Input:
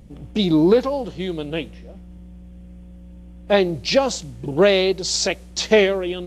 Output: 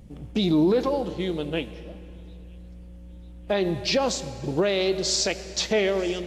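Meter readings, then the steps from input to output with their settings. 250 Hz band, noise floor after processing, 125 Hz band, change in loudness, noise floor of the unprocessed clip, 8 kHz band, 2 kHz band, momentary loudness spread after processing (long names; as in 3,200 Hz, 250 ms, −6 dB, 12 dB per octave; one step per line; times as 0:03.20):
−4.0 dB, −43 dBFS, −3.5 dB, −5.0 dB, −42 dBFS, −2.0 dB, −6.5 dB, 17 LU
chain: dense smooth reverb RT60 3 s, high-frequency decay 0.8×, DRR 14.5 dB
brickwall limiter −11.5 dBFS, peak gain reduction 8.5 dB
on a send: delay with a high-pass on its return 945 ms, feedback 53%, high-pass 5,000 Hz, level −20.5 dB
on the sum: level −2 dB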